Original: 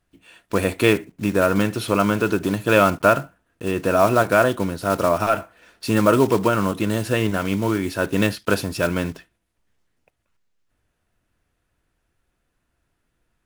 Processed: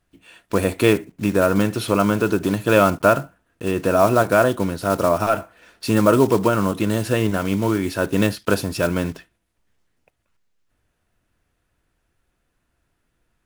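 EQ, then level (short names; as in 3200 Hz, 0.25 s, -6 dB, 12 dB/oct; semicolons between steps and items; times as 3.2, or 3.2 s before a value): dynamic EQ 2300 Hz, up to -4 dB, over -31 dBFS, Q 0.79; +1.5 dB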